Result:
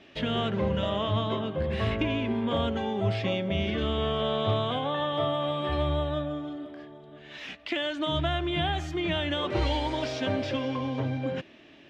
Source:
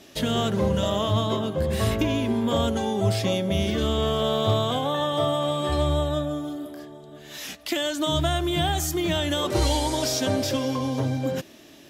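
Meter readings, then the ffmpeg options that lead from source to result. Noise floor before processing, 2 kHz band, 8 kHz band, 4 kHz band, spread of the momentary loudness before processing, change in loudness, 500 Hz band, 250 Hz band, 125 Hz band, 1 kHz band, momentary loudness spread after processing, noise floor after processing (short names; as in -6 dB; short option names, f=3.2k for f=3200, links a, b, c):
-49 dBFS, -1.0 dB, under -20 dB, -4.5 dB, 9 LU, -4.5 dB, -4.0 dB, -4.5 dB, -4.5 dB, -3.5 dB, 9 LU, -53 dBFS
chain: -af "lowpass=f=2.6k:t=q:w=1.7,volume=-4.5dB"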